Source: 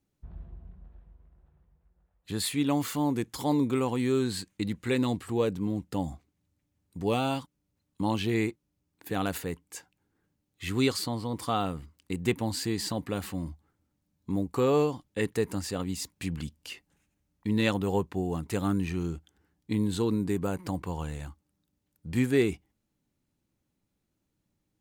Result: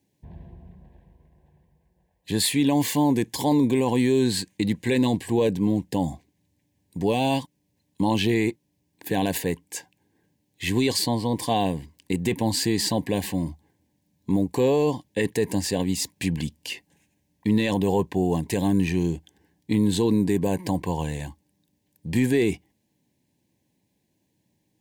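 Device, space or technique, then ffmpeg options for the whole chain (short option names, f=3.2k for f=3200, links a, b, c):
PA system with an anti-feedback notch: -af "highpass=100,asuperstop=centerf=1300:order=8:qfactor=2.6,alimiter=limit=-20.5dB:level=0:latency=1:release=16,volume=8.5dB"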